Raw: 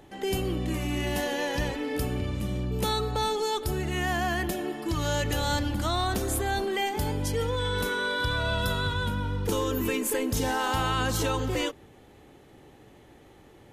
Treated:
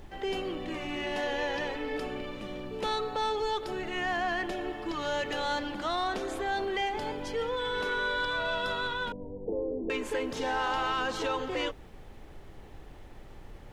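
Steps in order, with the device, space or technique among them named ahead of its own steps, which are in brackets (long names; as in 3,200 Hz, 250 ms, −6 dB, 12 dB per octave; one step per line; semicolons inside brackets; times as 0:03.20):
aircraft cabin announcement (band-pass filter 360–3,700 Hz; soft clipping −21 dBFS, distortion −22 dB; brown noise bed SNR 13 dB)
0:09.12–0:09.90: Butterworth low-pass 720 Hz 48 dB per octave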